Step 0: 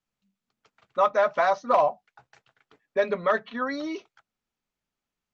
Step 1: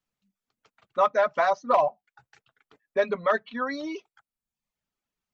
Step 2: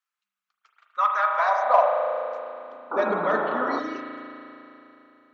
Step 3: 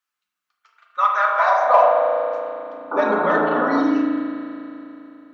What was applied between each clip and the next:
reverb removal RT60 0.72 s
spring tank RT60 3.3 s, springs 36 ms, chirp 50 ms, DRR 0.5 dB; high-pass sweep 1300 Hz -> 100 Hz, 1.15–3.94; painted sound noise, 2.91–3.8, 270–1500 Hz -25 dBFS; gain -3 dB
FDN reverb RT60 0.83 s, low-frequency decay 1.55×, high-frequency decay 0.65×, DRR 2 dB; gain +3 dB

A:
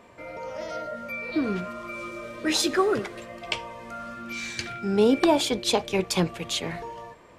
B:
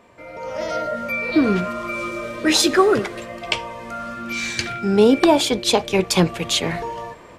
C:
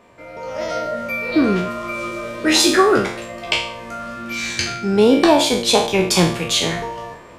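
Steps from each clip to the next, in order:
AGC gain up to 9.5 dB
spectral trails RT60 0.53 s

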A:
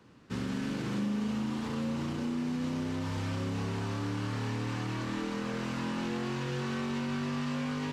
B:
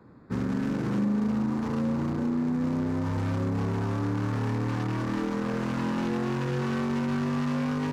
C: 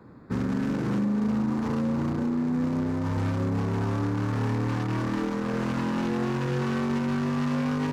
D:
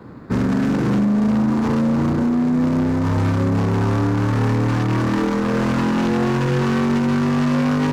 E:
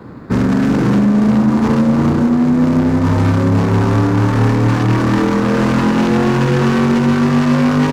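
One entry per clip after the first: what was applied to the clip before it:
Wiener smoothing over 15 samples; gain +6 dB
limiter -23 dBFS, peak gain reduction 4 dB; gain +3.5 dB
sample leveller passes 1; gain +7 dB
echo 0.406 s -10.5 dB; gain +5 dB

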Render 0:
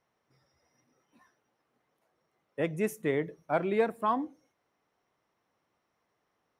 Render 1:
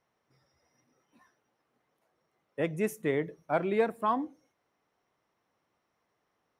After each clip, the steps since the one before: nothing audible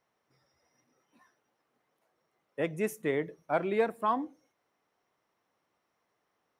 low shelf 170 Hz -6 dB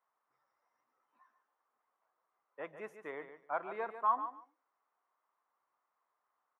band-pass 1100 Hz, Q 2.5; feedback echo 0.145 s, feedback 17%, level -10.5 dB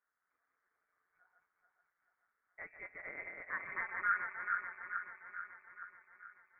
regenerating reverse delay 0.216 s, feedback 76%, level -3 dB; AM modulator 180 Hz, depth 45%; inverted band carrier 2500 Hz; gain -1.5 dB

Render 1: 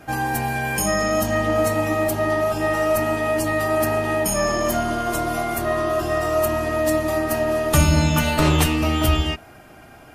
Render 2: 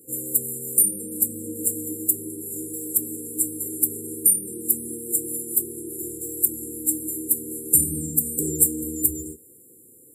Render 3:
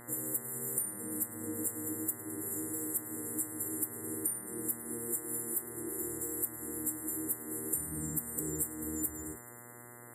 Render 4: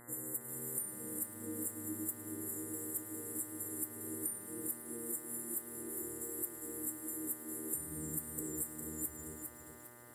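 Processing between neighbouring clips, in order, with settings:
HPF 81 Hz 24 dB/oct; FFT band-reject 520–7100 Hz; tone controls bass -13 dB, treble +14 dB; gain -3 dB
compressor, threshold -28 dBFS, peak gain reduction 15.5 dB; buzz 120 Hz, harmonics 17, -49 dBFS -2 dB/oct; thinning echo 0.108 s, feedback 78%, level -17 dB; gain -4.5 dB
lo-fi delay 0.405 s, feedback 35%, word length 9-bit, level -6 dB; gain -5.5 dB

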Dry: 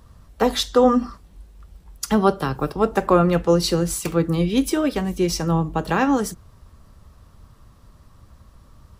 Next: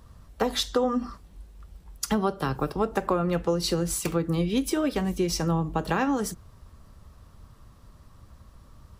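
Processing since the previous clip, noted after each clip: compressor 6:1, threshold -19 dBFS, peak gain reduction 9.5 dB; gain -2 dB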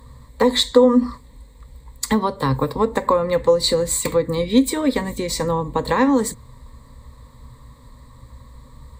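ripple EQ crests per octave 1, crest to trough 15 dB; gain +5 dB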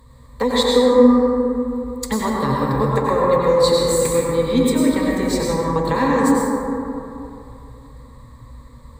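reverb RT60 2.8 s, pre-delay 83 ms, DRR -4.5 dB; gain -4 dB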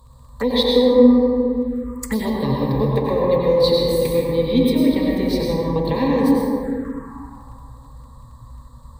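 envelope phaser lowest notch 330 Hz, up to 1400 Hz, full sweep at -17 dBFS; crackle 23/s -48 dBFS; gain +1 dB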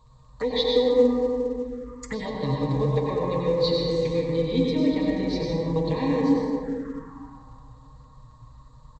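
comb 6.5 ms, depth 73%; gain -7.5 dB; µ-law 128 kbps 16000 Hz

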